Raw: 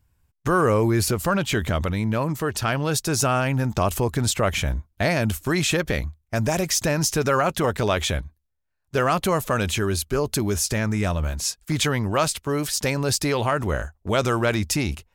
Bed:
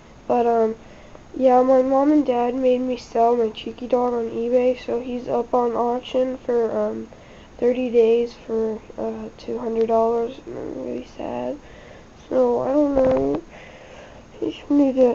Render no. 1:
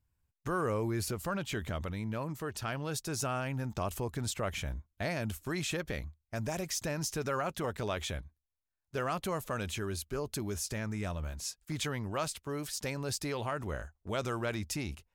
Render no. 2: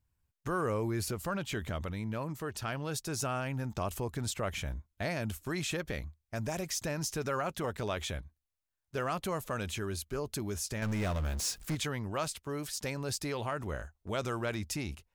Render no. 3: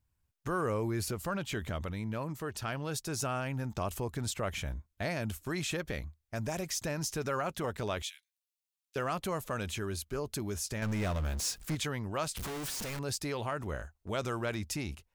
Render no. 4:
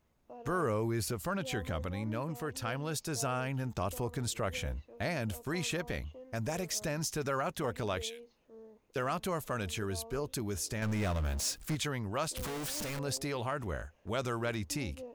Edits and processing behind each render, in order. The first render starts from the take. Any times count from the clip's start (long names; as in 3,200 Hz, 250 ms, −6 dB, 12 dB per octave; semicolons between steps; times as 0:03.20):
level −13 dB
0:10.82–0:11.75: power curve on the samples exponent 0.5
0:08.02–0:08.96: inverse Chebyshev high-pass filter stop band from 550 Hz, stop band 70 dB; 0:12.37–0:12.99: sign of each sample alone
mix in bed −30.5 dB